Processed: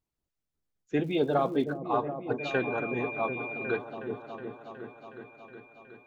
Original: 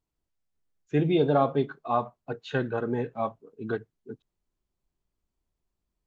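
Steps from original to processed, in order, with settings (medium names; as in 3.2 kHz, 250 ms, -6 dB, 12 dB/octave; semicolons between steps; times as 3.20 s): harmonic-percussive split harmonic -11 dB; 1.03–1.76 s: crackle 200 per s -47 dBFS; 2.38–3.77 s: whistle 2.4 kHz -38 dBFS; delay with an opening low-pass 367 ms, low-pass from 400 Hz, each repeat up 1 oct, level -6 dB; trim +1.5 dB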